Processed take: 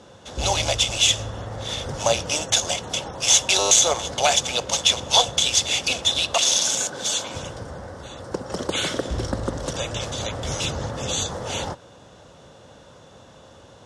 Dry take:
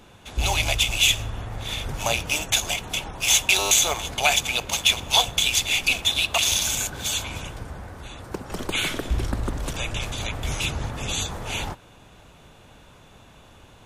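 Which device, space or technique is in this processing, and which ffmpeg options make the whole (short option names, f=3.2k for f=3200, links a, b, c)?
car door speaker: -filter_complex "[0:a]highpass=81,equalizer=f=530:t=q:w=4:g=9,equalizer=f=2.4k:t=q:w=4:g=-10,equalizer=f=5.4k:t=q:w=4:g=6,lowpass=f=9.1k:w=0.5412,lowpass=f=9.1k:w=1.3066,asettb=1/sr,asplit=3[a][b][c];[a]atrim=end=6.344[d];[b]atrim=start=6.34:end=7.35,asetpts=PTS-STARTPTS,afade=t=in:d=0.004:c=qsin,afade=t=out:st=1.006:d=0.004:c=qsin,highpass=190[e];[c]atrim=start=7.346[f];[d][e]acrossfade=d=0.004:c1=hsin:c2=qsin[g];[g][f]acrossfade=d=0.004:c1=qsin:c2=hsin,volume=2dB"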